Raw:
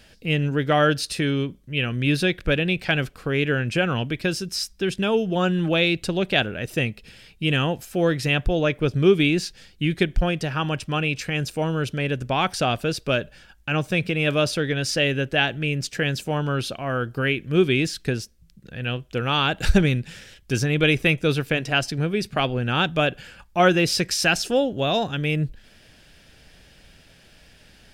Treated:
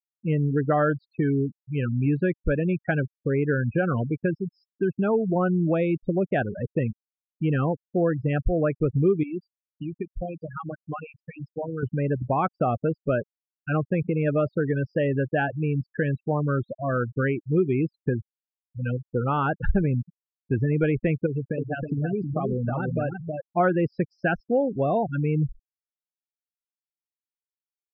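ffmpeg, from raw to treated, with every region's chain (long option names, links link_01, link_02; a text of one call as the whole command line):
ffmpeg -i in.wav -filter_complex "[0:a]asettb=1/sr,asplit=3[link_01][link_02][link_03];[link_01]atrim=end=9.234[link_04];[link_02]atrim=start=9.23:end=11.83,asetpts=PTS-STARTPTS,afade=type=in:duration=0.004:curve=qsin,afade=type=out:start_time=2.596:duration=0.004:curve=qsin,aemphasis=mode=production:type=bsi,acompressor=threshold=-27dB:ratio=3:attack=3.2:release=140:knee=1:detection=peak,asplit=2[link_05][link_06];[link_06]adelay=240,lowpass=frequency=1100:poles=1,volume=-13dB,asplit=2[link_07][link_08];[link_08]adelay=240,lowpass=frequency=1100:poles=1,volume=0.54,asplit=2[link_09][link_10];[link_10]adelay=240,lowpass=frequency=1100:poles=1,volume=0.54,asplit=2[link_11][link_12];[link_12]adelay=240,lowpass=frequency=1100:poles=1,volume=0.54,asplit=2[link_13][link_14];[link_14]adelay=240,lowpass=frequency=1100:poles=1,volume=0.54,asplit=2[link_15][link_16];[link_16]adelay=240,lowpass=frequency=1100:poles=1,volume=0.54[link_17];[link_05][link_07][link_09][link_11][link_13][link_15][link_17]amix=inputs=7:normalize=0,atrim=end_sample=114660[link_18];[link_03]atrim=start=11.826[link_19];[link_04][link_18]acrossfade=duration=0.004:curve1=hsin:curve2=qsin[link_20];[link_20][link_19]acrossfade=duration=0.004:curve1=qsin:curve2=hsin,asettb=1/sr,asplit=3[link_21][link_22][link_23];[link_21]atrim=end=21.264[link_24];[link_22]atrim=start=21.26:end=23.57,asetpts=PTS-STARTPTS,afade=type=in:duration=0.004:curve=qsin,afade=type=out:start_time=2.306:duration=0.004:curve=qsin,bandreject=frequency=1300:width=23,acompressor=threshold=-22dB:ratio=10:attack=3.2:release=140:knee=1:detection=peak,aecho=1:1:319:0.668,atrim=end_sample=101871[link_25];[link_23]atrim=start=23.566[link_26];[link_24][link_25]acrossfade=duration=0.004:curve1=hsin:curve2=qsin[link_27];[link_27][link_26]acrossfade=duration=0.004:curve1=qsin:curve2=hsin,afftfilt=real='re*gte(hypot(re,im),0.126)':imag='im*gte(hypot(re,im),0.126)':win_size=1024:overlap=0.75,lowpass=frequency=1600:width=0.5412,lowpass=frequency=1600:width=1.3066,acompressor=threshold=-22dB:ratio=2.5,volume=2dB" out.wav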